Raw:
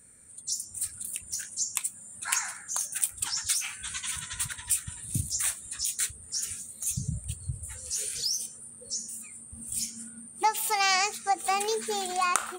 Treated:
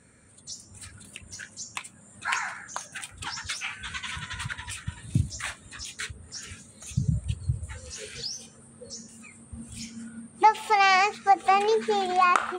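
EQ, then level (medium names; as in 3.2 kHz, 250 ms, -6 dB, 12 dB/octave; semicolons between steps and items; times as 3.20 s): dynamic bell 6.3 kHz, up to -7 dB, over -43 dBFS, Q 0.77; high-pass 56 Hz; distance through air 130 m; +7.5 dB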